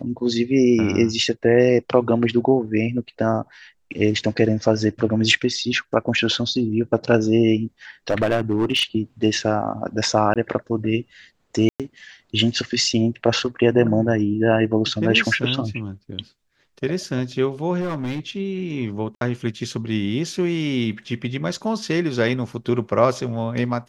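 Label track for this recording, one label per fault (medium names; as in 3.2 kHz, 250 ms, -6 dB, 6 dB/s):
8.100000	8.830000	clipped -14 dBFS
10.340000	10.360000	dropout 17 ms
11.690000	11.800000	dropout 107 ms
17.800000	18.200000	clipped -21.5 dBFS
19.150000	19.210000	dropout 62 ms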